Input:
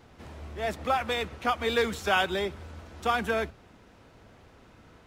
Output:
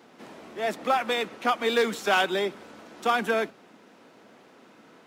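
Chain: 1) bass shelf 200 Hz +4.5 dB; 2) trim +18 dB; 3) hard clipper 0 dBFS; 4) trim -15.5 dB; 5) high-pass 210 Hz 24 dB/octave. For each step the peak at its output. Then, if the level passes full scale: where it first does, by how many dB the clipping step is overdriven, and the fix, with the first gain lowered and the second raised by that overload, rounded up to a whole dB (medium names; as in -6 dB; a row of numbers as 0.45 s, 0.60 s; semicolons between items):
-13.0 dBFS, +5.0 dBFS, 0.0 dBFS, -15.5 dBFS, -11.5 dBFS; step 2, 5.0 dB; step 2 +13 dB, step 4 -10.5 dB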